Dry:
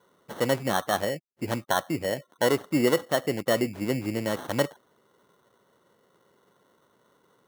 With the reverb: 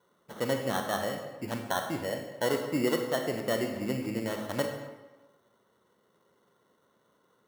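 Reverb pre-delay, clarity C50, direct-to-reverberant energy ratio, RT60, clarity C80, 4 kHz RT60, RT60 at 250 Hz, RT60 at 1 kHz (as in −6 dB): 26 ms, 5.5 dB, 4.0 dB, 1.2 s, 7.5 dB, 0.85 s, 1.1 s, 1.2 s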